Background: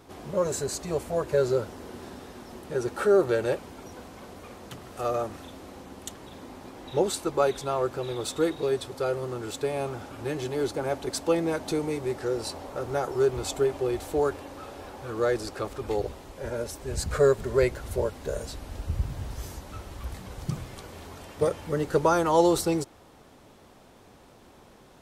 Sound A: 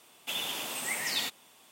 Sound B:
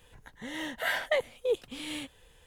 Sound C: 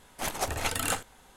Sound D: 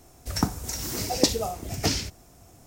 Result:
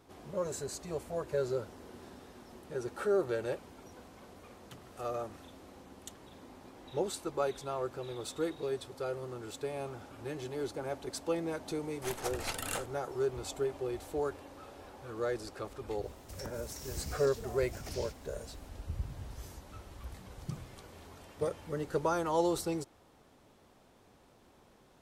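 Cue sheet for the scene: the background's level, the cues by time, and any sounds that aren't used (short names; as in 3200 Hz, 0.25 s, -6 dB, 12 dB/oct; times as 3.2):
background -9 dB
11.83 add C -8 dB
16.03 add D -8 dB + compressor, threshold -34 dBFS
not used: A, B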